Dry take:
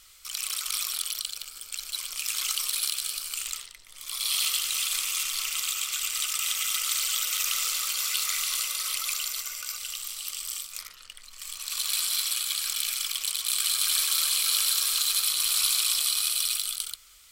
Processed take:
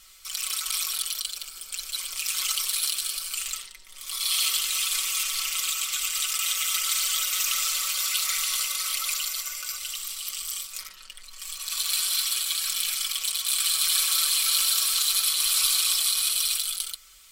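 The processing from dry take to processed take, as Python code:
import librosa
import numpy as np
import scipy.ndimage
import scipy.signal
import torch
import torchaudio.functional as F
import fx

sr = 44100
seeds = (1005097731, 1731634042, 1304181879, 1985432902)

y = x + 0.74 * np.pad(x, (int(5.3 * sr / 1000.0), 0))[:len(x)]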